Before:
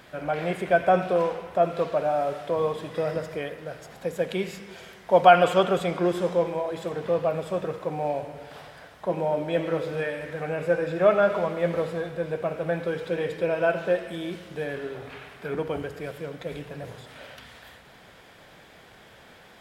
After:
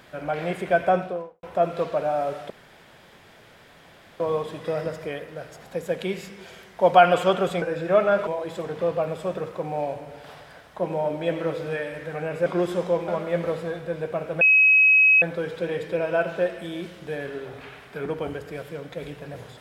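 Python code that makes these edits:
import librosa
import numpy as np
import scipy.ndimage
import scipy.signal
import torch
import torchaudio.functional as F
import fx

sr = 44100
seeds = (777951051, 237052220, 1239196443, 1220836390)

y = fx.studio_fade_out(x, sr, start_s=0.84, length_s=0.59)
y = fx.edit(y, sr, fx.insert_room_tone(at_s=2.5, length_s=1.7),
    fx.swap(start_s=5.92, length_s=0.62, other_s=10.73, other_length_s=0.65),
    fx.insert_tone(at_s=12.71, length_s=0.81, hz=2550.0, db=-12.5), tone=tone)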